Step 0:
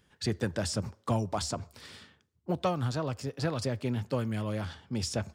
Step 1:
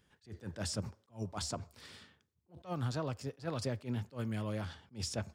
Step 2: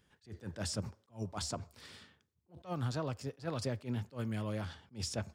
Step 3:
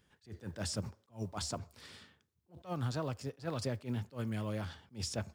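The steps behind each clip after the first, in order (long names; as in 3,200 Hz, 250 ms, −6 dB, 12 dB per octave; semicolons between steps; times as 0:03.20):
level that may rise only so fast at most 270 dB per second; level −4.5 dB
no processing that can be heard
one scale factor per block 7 bits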